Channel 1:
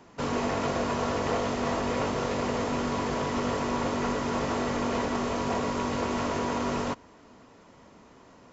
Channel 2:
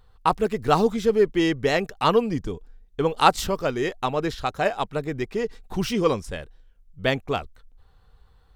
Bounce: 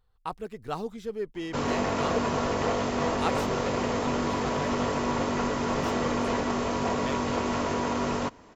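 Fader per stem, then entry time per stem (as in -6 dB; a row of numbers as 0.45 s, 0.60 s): +1.0 dB, -14.0 dB; 1.35 s, 0.00 s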